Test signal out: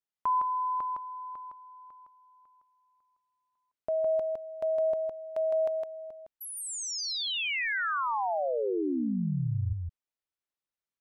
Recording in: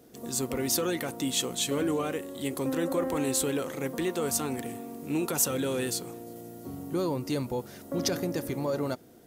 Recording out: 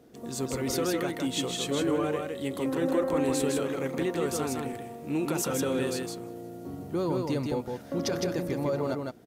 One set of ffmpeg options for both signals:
-af "lowpass=f=3.5k:p=1,aecho=1:1:160:0.668"

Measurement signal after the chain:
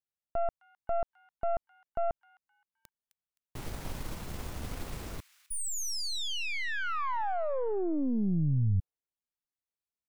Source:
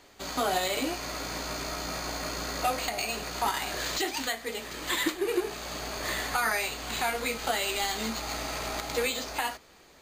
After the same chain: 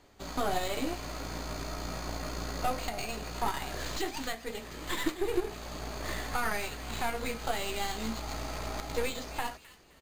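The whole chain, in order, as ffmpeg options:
-filter_complex "[0:a]aeval=exprs='0.178*(cos(1*acos(clip(val(0)/0.178,-1,1)))-cos(1*PI/2))+0.0158*(cos(6*acos(clip(val(0)/0.178,-1,1)))-cos(6*PI/2))+0.00316*(cos(7*acos(clip(val(0)/0.178,-1,1)))-cos(7*PI/2))':c=same,lowshelf=f=280:g=11.5,acrossover=split=1200[a][b];[a]crystalizer=i=9.5:c=0[c];[b]asplit=4[d][e][f][g];[e]adelay=260,afreqshift=72,volume=-14dB[h];[f]adelay=520,afreqshift=144,volume=-23.9dB[i];[g]adelay=780,afreqshift=216,volume=-33.8dB[j];[d][h][i][j]amix=inputs=4:normalize=0[k];[c][k]amix=inputs=2:normalize=0,volume=-7.5dB"

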